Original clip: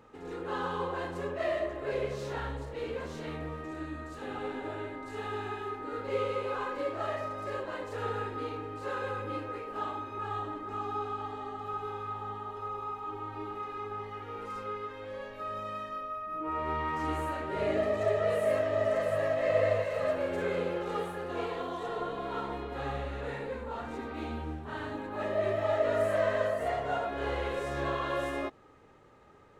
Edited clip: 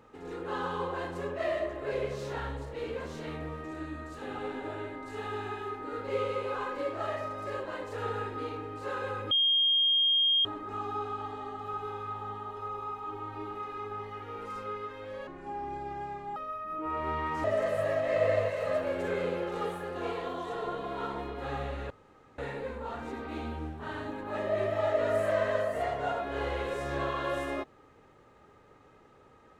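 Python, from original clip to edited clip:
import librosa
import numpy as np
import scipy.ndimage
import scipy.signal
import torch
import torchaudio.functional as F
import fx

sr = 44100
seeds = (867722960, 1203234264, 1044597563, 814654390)

y = fx.edit(x, sr, fx.bleep(start_s=9.31, length_s=1.14, hz=3230.0, db=-22.0),
    fx.speed_span(start_s=15.27, length_s=0.71, speed=0.65),
    fx.cut(start_s=17.06, length_s=1.72),
    fx.insert_room_tone(at_s=23.24, length_s=0.48), tone=tone)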